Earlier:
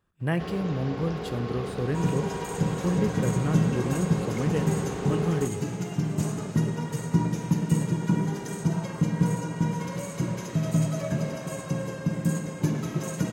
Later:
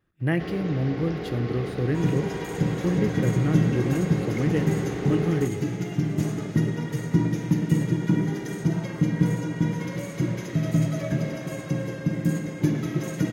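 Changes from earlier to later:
second sound: remove notch filter 3,400 Hz, Q 20
master: add thirty-one-band graphic EQ 125 Hz +5 dB, 315 Hz +9 dB, 1,000 Hz −6 dB, 2,000 Hz +7 dB, 8,000 Hz −10 dB

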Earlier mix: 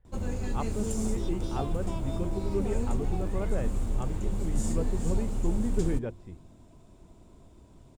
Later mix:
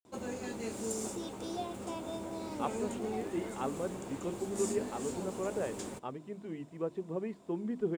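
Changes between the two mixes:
speech: entry +2.05 s
master: add high-pass filter 270 Hz 12 dB per octave

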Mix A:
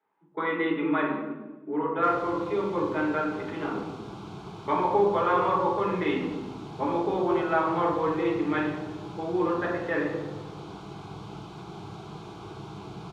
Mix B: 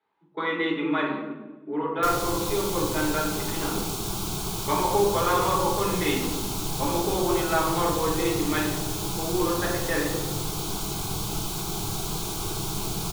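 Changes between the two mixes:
background +7.0 dB
master: remove band-pass filter 100–2,200 Hz

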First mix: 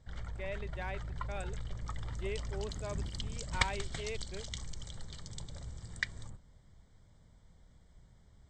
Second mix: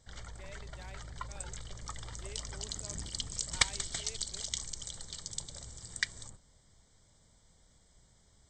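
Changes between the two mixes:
speech −11.5 dB
master: add bass and treble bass −6 dB, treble +13 dB

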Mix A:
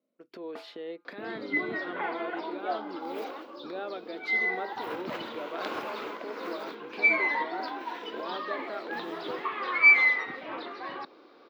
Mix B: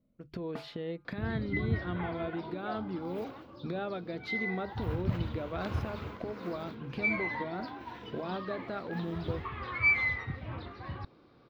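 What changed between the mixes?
speech: add mains-hum notches 50/100/150 Hz
second sound −8.0 dB
master: remove high-pass filter 310 Hz 24 dB per octave

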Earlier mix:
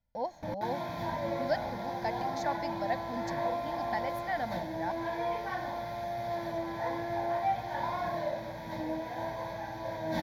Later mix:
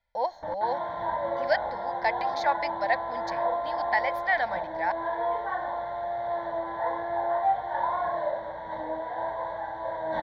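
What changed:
background: add moving average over 18 samples
master: add octave-band graphic EQ 125/250/500/1,000/2,000/4,000/8,000 Hz −9/−9/+5/+7/+11/+9/−8 dB

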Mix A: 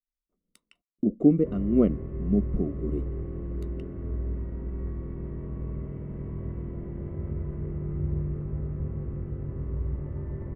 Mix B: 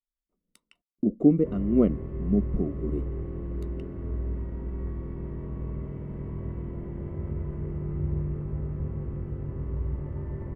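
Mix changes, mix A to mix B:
background: remove high-frequency loss of the air 200 metres
master: add parametric band 910 Hz +4 dB 0.32 octaves

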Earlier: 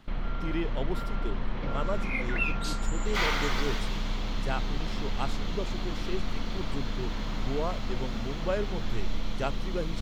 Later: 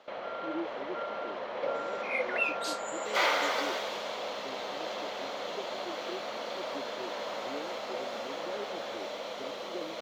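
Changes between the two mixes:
speech: add four-pole ladder band-pass 350 Hz, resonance 60%
first sound: add high-pass with resonance 560 Hz, resonance Q 3.9

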